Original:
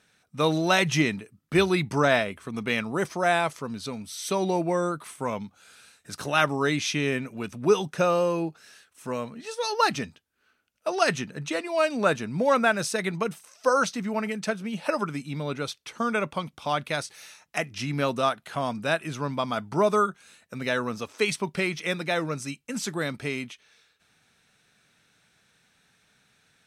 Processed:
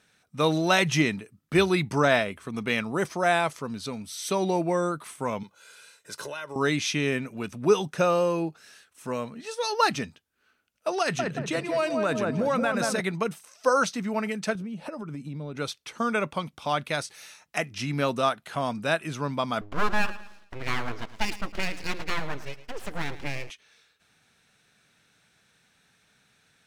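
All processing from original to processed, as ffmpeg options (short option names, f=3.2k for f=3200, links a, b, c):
-filter_complex "[0:a]asettb=1/sr,asplit=3[a][b][c];[a]atrim=end=5.434[d];[b]atrim=start=5.43:end=6.56,asetpts=PTS-STARTPTS,afade=t=in:d=0.004:c=qsin,afade=t=out:st=1.126:d=0.004:c=qsin,highpass=220,aecho=1:1:2:0.67,atrim=end_sample=49833,acompressor=threshold=-32dB:ratio=12:attack=3.2:release=140:knee=1:detection=peak[e];[c]atrim=start=6.556[f];[d][e]acrossfade=d=0.004:c1=hsin:c2=qsin[g];[g][f]acrossfade=d=0.004:c1=qsin:c2=hsin,asettb=1/sr,asplit=3[h][i][j];[h]atrim=end=11.014[k];[i]atrim=start=11.01:end=13.01,asetpts=PTS-STARTPTS,afade=t=in:d=0.004:c=qsin,afade=t=out:st=1.996:d=0.004:c=qsin,asplit=2[l][m];[m]adelay=178,lowpass=f=1.1k:p=1,volume=-3.5dB,asplit=2[n][o];[o]adelay=178,lowpass=f=1.1k:p=1,volume=0.47,asplit=2[p][q];[q]adelay=178,lowpass=f=1.1k:p=1,volume=0.47,asplit=2[r][s];[s]adelay=178,lowpass=f=1.1k:p=1,volume=0.47,asplit=2[t][u];[u]adelay=178,lowpass=f=1.1k:p=1,volume=0.47,asplit=2[v][w];[w]adelay=178,lowpass=f=1.1k:p=1,volume=0.47[x];[l][n][p][r][t][v][x]amix=inputs=7:normalize=0,atrim=end_sample=88200,acompressor=threshold=-21dB:ratio=4:attack=3.2:release=140:knee=1:detection=peak[y];[j]atrim=start=13.006[z];[k][y]acrossfade=d=0.004:c1=hsin:c2=qsin[aa];[aa][z]acrossfade=d=0.004:c1=qsin:c2=hsin,asettb=1/sr,asplit=3[ab][ac][ad];[ab]atrim=end=14.554[ae];[ac]atrim=start=14.55:end=15.57,asetpts=PTS-STARTPTS,afade=t=in:d=0.004:c=qsin,afade=t=out:st=1.016:d=0.004:c=qsin,tiltshelf=f=650:g=6.5,acompressor=threshold=-32dB:ratio=8:attack=3.2:release=140:knee=1:detection=peak[af];[ad]atrim=start=15.566[ag];[ae][af]acrossfade=d=0.004:c1=hsin:c2=qsin[ah];[ah][ag]acrossfade=d=0.004:c1=qsin:c2=hsin,asettb=1/sr,asplit=3[ai][aj][ak];[ai]atrim=end=19.614[al];[aj]atrim=start=19.61:end=23.5,asetpts=PTS-STARTPTS,afade=t=in:d=0.004:c=qsin,afade=t=out:st=3.886:d=0.004:c=qsin,lowpass=3.2k,aeval=exprs='abs(val(0))':c=same,aecho=1:1:109|218|327|436:0.178|0.0711|0.0285|0.0114,atrim=end_sample=171549[am];[ak]atrim=start=23.496[an];[al][am]acrossfade=d=0.004:c1=hsin:c2=qsin[ao];[ao][an]acrossfade=d=0.004:c1=qsin:c2=hsin"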